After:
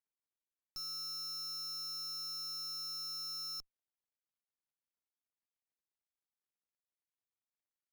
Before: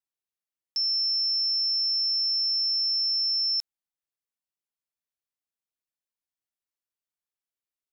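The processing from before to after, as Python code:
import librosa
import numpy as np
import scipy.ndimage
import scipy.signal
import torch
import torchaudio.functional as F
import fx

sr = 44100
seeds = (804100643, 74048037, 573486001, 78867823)

y = scipy.signal.medfilt(x, 15)
y = fx.tube_stage(y, sr, drive_db=45.0, bias=0.6)
y = y * librosa.db_to_amplitude(4.5)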